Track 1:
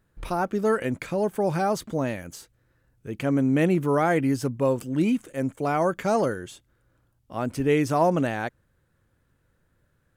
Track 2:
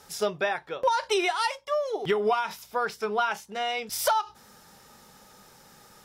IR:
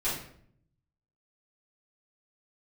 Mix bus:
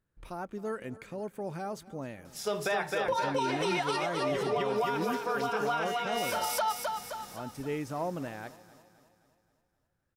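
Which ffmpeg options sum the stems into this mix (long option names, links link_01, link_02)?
-filter_complex "[0:a]volume=-13dB,asplit=3[link_01][link_02][link_03];[link_02]volume=-18.5dB[link_04];[1:a]adelay=2250,volume=2.5dB,asplit=3[link_05][link_06][link_07];[link_06]volume=-21dB[link_08];[link_07]volume=-7dB[link_09];[link_03]apad=whole_len=366019[link_10];[link_05][link_10]sidechaincompress=threshold=-49dB:ratio=8:attack=16:release=656[link_11];[2:a]atrim=start_sample=2205[link_12];[link_08][link_12]afir=irnorm=-1:irlink=0[link_13];[link_04][link_09]amix=inputs=2:normalize=0,aecho=0:1:262|524|786|1048|1310|1572|1834:1|0.5|0.25|0.125|0.0625|0.0312|0.0156[link_14];[link_01][link_11][link_13][link_14]amix=inputs=4:normalize=0,alimiter=limit=-21dB:level=0:latency=1:release=50"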